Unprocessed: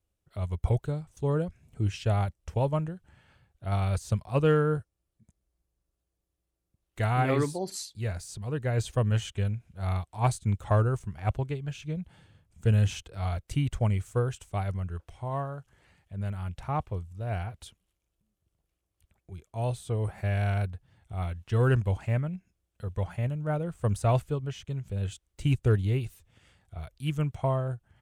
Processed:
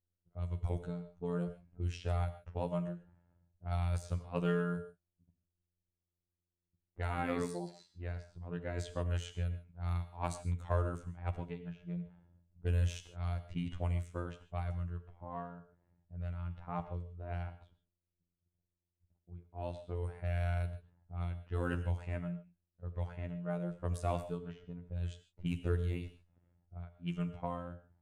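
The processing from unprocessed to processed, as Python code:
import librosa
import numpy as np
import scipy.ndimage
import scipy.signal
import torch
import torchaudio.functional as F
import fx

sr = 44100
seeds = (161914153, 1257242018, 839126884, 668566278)

y = fx.robotise(x, sr, hz=87.2)
y = fx.env_lowpass(y, sr, base_hz=520.0, full_db=-26.0)
y = fx.rev_gated(y, sr, seeds[0], gate_ms=170, shape='flat', drr_db=10.0)
y = y * librosa.db_to_amplitude(-6.5)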